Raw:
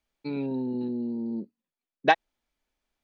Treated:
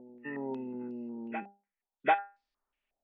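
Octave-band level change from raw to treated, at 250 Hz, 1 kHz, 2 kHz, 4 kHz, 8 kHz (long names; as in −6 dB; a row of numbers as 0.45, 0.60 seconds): −9.5 dB, −3.5 dB, −6.5 dB, −12.5 dB, can't be measured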